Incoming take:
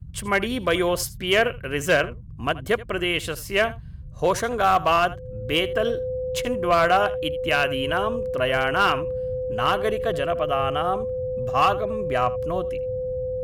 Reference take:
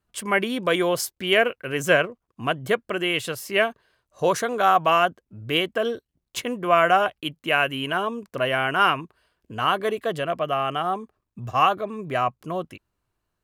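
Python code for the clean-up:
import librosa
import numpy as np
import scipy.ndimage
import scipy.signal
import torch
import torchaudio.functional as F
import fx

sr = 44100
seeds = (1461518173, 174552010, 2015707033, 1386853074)

y = fx.fix_declip(x, sr, threshold_db=-12.0)
y = fx.notch(y, sr, hz=510.0, q=30.0)
y = fx.noise_reduce(y, sr, print_start_s=3.72, print_end_s=4.22, reduce_db=30.0)
y = fx.fix_echo_inverse(y, sr, delay_ms=79, level_db=-18.5)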